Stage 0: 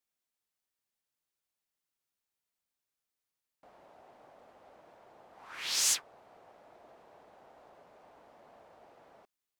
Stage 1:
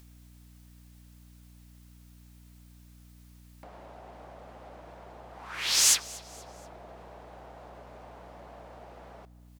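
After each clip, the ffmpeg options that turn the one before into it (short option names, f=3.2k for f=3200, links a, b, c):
-filter_complex "[0:a]asplit=2[a][b];[b]acompressor=mode=upward:threshold=-47dB:ratio=2.5,volume=1dB[c];[a][c]amix=inputs=2:normalize=0,aeval=exprs='val(0)+0.00251*(sin(2*PI*60*n/s)+sin(2*PI*2*60*n/s)/2+sin(2*PI*3*60*n/s)/3+sin(2*PI*4*60*n/s)/4+sin(2*PI*5*60*n/s)/5)':c=same,aecho=1:1:239|478|717:0.0794|0.035|0.0154"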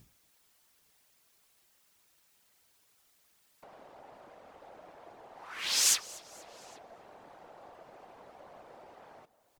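-filter_complex "[0:a]bandreject=f=60:t=h:w=6,bandreject=f=120:t=h:w=6,bandreject=f=180:t=h:w=6,bandreject=f=240:t=h:w=6,bandreject=f=300:t=h:w=6,asplit=2[a][b];[b]adelay=816.3,volume=-20dB,highshelf=f=4k:g=-18.4[c];[a][c]amix=inputs=2:normalize=0,afftfilt=real='hypot(re,im)*cos(2*PI*random(0))':imag='hypot(re,im)*sin(2*PI*random(1))':win_size=512:overlap=0.75,volume=2dB"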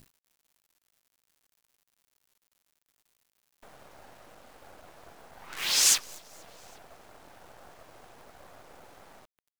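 -af "acrusher=bits=7:dc=4:mix=0:aa=0.000001,volume=4dB"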